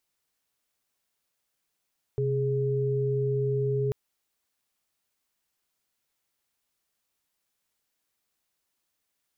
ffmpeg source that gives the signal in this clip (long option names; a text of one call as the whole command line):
ffmpeg -f lavfi -i "aevalsrc='0.0473*(sin(2*PI*130.81*t)+sin(2*PI*415.3*t))':duration=1.74:sample_rate=44100" out.wav